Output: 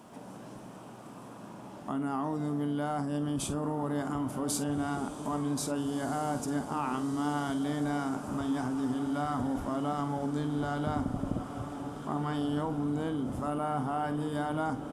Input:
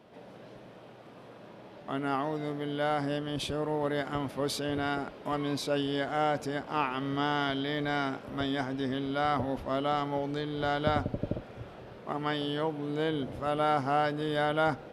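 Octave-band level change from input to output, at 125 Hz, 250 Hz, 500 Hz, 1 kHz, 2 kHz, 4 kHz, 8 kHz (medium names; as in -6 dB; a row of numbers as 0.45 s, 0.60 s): +1.0 dB, +2.5 dB, -5.5 dB, -3.0 dB, -7.5 dB, -8.5 dB, +8.0 dB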